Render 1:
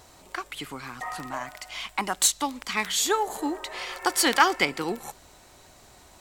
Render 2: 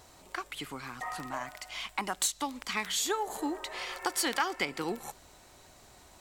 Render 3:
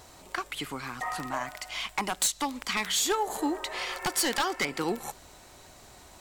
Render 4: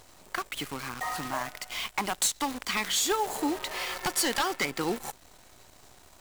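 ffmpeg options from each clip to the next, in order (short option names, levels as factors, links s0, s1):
-af "acompressor=threshold=0.0562:ratio=2.5,volume=0.668"
-af "aeval=exprs='0.0668*(abs(mod(val(0)/0.0668+3,4)-2)-1)':c=same,volume=1.68"
-af "acrusher=bits=7:dc=4:mix=0:aa=0.000001"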